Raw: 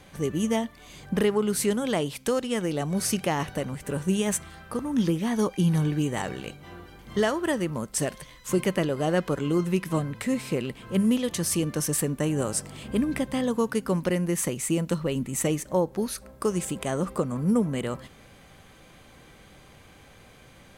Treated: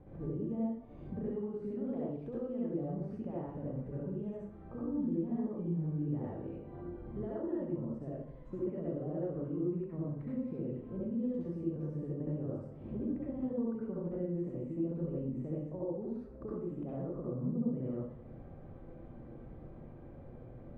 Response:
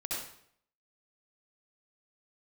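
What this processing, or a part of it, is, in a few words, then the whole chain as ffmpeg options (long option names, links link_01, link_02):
television next door: -filter_complex "[0:a]acompressor=threshold=-42dB:ratio=3,lowpass=510[link_01];[1:a]atrim=start_sample=2205[link_02];[link_01][link_02]afir=irnorm=-1:irlink=0,volume=1.5dB"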